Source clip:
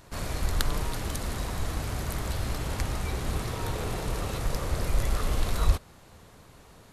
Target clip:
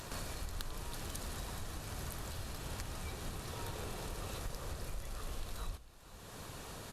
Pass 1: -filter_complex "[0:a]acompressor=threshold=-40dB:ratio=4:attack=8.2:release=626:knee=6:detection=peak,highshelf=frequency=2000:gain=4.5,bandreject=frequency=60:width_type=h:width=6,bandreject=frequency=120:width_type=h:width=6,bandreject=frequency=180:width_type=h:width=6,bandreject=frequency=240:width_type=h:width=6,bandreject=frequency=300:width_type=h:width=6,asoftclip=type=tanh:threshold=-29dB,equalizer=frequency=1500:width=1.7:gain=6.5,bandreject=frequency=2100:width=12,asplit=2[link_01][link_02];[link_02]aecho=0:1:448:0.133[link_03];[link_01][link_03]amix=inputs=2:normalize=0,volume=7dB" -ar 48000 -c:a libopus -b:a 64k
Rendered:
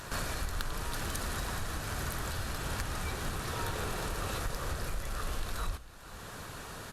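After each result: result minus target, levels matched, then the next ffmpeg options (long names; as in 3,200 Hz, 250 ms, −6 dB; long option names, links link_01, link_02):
downward compressor: peak gain reduction −7 dB; 2,000 Hz band +3.5 dB
-filter_complex "[0:a]acompressor=threshold=-49dB:ratio=4:attack=8.2:release=626:knee=6:detection=peak,highshelf=frequency=2000:gain=4.5,bandreject=frequency=60:width_type=h:width=6,bandreject=frequency=120:width_type=h:width=6,bandreject=frequency=180:width_type=h:width=6,bandreject=frequency=240:width_type=h:width=6,bandreject=frequency=300:width_type=h:width=6,asoftclip=type=tanh:threshold=-29dB,equalizer=frequency=1500:width=1.7:gain=6.5,bandreject=frequency=2100:width=12,asplit=2[link_01][link_02];[link_02]aecho=0:1:448:0.133[link_03];[link_01][link_03]amix=inputs=2:normalize=0,volume=7dB" -ar 48000 -c:a libopus -b:a 64k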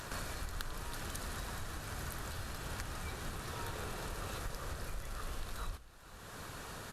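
2,000 Hz band +3.5 dB
-filter_complex "[0:a]acompressor=threshold=-49dB:ratio=4:attack=8.2:release=626:knee=6:detection=peak,highshelf=frequency=2000:gain=4.5,bandreject=frequency=60:width_type=h:width=6,bandreject=frequency=120:width_type=h:width=6,bandreject=frequency=180:width_type=h:width=6,bandreject=frequency=240:width_type=h:width=6,bandreject=frequency=300:width_type=h:width=6,asoftclip=type=tanh:threshold=-29dB,bandreject=frequency=2100:width=12,asplit=2[link_01][link_02];[link_02]aecho=0:1:448:0.133[link_03];[link_01][link_03]amix=inputs=2:normalize=0,volume=7dB" -ar 48000 -c:a libopus -b:a 64k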